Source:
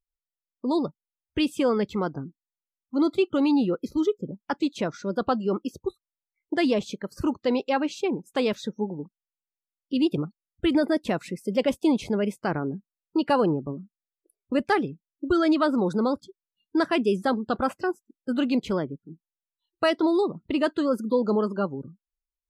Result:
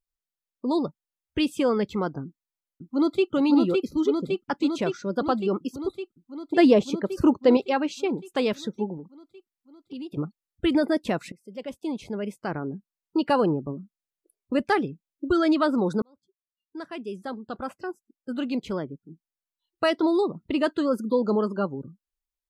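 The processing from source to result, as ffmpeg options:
-filter_complex "[0:a]asplit=2[s0][s1];[s1]afade=t=in:st=2.24:d=0.01,afade=t=out:st=3.31:d=0.01,aecho=0:1:560|1120|1680|2240|2800|3360|3920|4480|5040|5600|6160|6720:0.749894|0.562421|0.421815|0.316362|0.237271|0.177953|0.133465|0.100099|0.0750741|0.0563056|0.0422292|0.0316719[s2];[s0][s2]amix=inputs=2:normalize=0,asettb=1/sr,asplit=3[s3][s4][s5];[s3]atrim=end=6.564[s6];[s4]atrim=start=6.56:end=7.57,asetpts=PTS-STARTPTS,afade=t=in:d=0.004:c=qsin,afade=t=out:st=1.006:d=0.004:c=qsin,equalizer=f=410:t=o:w=2.9:g=7[s7];[s5]atrim=start=7.566[s8];[s6][s7]acrossfade=d=0.004:c1=hsin:c2=qsin[s9];[s9][s8]acrossfade=d=0.004:c1=qsin:c2=hsin,asettb=1/sr,asplit=3[s10][s11][s12];[s10]atrim=end=8.974[s13];[s11]atrim=start=8.97:end=10.17,asetpts=PTS-STARTPTS,afade=t=in:d=0.004:c=qsin,afade=t=out:st=1.196:d=0.004:c=qsin,acompressor=threshold=0.0158:ratio=4:attack=3.2:release=140:knee=1:detection=peak[s14];[s12]atrim=start=10.166[s15];[s13][s14]acrossfade=d=0.004:c1=hsin:c2=qsin[s16];[s16][s15]acrossfade=d=0.004:c1=qsin:c2=hsin,asplit=3[s17][s18][s19];[s17]atrim=end=11.32,asetpts=PTS-STARTPTS,afade=t=out:st=11.316:d=0.004:c=hsin:silence=0.0841395[s20];[s18]atrim=start=11.32:end=16.02,asetpts=PTS-STARTPTS,afade=t=in:d=1.85:silence=0.0841395,afade=t=out:st=4.696:d=0.004:c=hsin[s21];[s19]atrim=start=16.02,asetpts=PTS-STARTPTS,afade=t=in:d=4.03[s22];[s20][s21][s22]concat=n=3:v=0:a=1"

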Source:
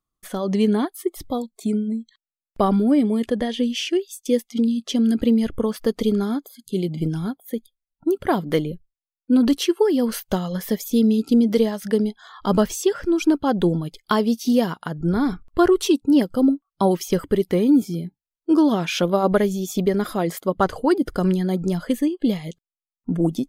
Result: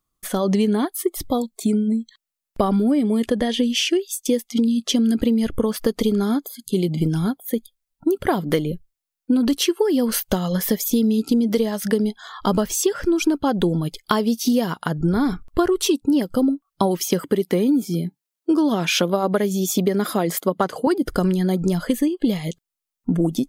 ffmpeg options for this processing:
-filter_complex "[0:a]asettb=1/sr,asplit=3[s0][s1][s2];[s0]atrim=end=17.004[s3];[s1]atrim=start=17:end=20.87,asetpts=PTS-STARTPTS,afade=t=in:d=0.004:c=qsin,afade=t=out:st=3.866:d=0.004:c=qsin,highpass=f=140:w=0.5412,highpass=f=140:w=1.3066[s4];[s2]atrim=start=20.866[s5];[s3][s4]acrossfade=d=0.004:c1=hsin:c2=qsin[s6];[s6][s5]acrossfade=d=0.004:c1=qsin:c2=hsin,highshelf=f=5700:g=5,acompressor=threshold=0.0891:ratio=6,volume=1.88"

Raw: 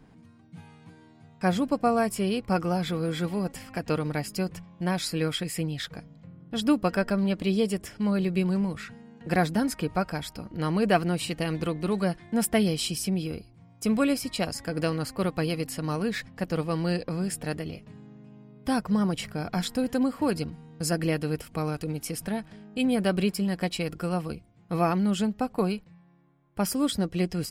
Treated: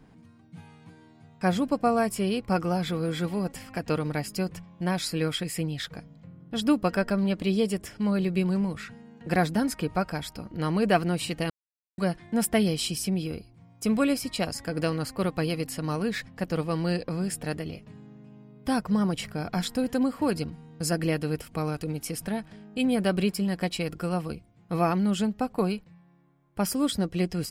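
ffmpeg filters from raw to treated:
-filter_complex "[0:a]asplit=3[s0][s1][s2];[s0]atrim=end=11.5,asetpts=PTS-STARTPTS,afade=t=out:st=11.496:d=0.004:c=hsin[s3];[s1]atrim=start=11.5:end=11.98,asetpts=PTS-STARTPTS,volume=0[s4];[s2]atrim=start=11.98,asetpts=PTS-STARTPTS,afade=t=in:d=0.004:c=hsin[s5];[s3][s4][s5]concat=n=3:v=0:a=1"

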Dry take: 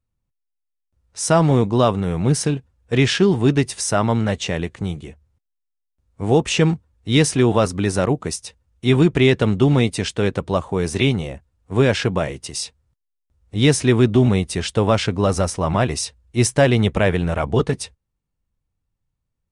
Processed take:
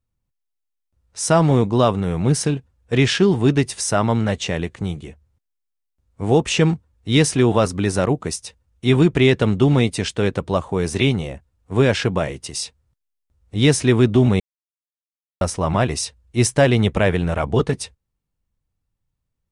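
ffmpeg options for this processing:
-filter_complex "[0:a]asplit=3[s0][s1][s2];[s0]atrim=end=14.4,asetpts=PTS-STARTPTS,afade=t=out:st=14.396:d=0.004:c=hsin[s3];[s1]atrim=start=14.4:end=15.41,asetpts=PTS-STARTPTS,volume=0[s4];[s2]atrim=start=15.41,asetpts=PTS-STARTPTS,afade=t=in:d=0.004:c=hsin[s5];[s3][s4][s5]concat=n=3:v=0:a=1"

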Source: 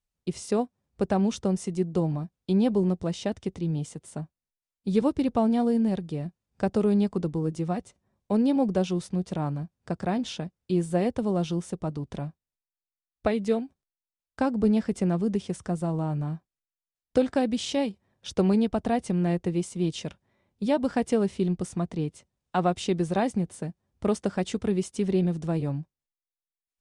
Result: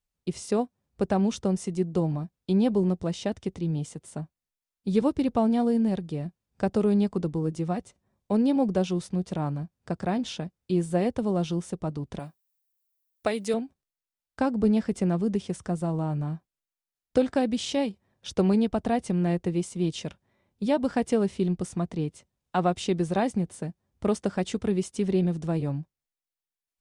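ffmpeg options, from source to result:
-filter_complex "[0:a]asettb=1/sr,asplit=3[s0][s1][s2];[s0]atrim=end=12.194[s3];[s1]atrim=start=12.19:end=13.54,asetpts=PTS-STARTPTS,afade=t=in:d=0.004:c=qsin,afade=t=out:st=1.346:d=0.004:c=qsin,aemphasis=mode=production:type=bsi[s4];[s2]atrim=start=13.536[s5];[s3][s4]acrossfade=d=0.004:c1=hsin:c2=qsin[s6];[s6][s5]acrossfade=d=0.004:c1=qsin:c2=hsin"

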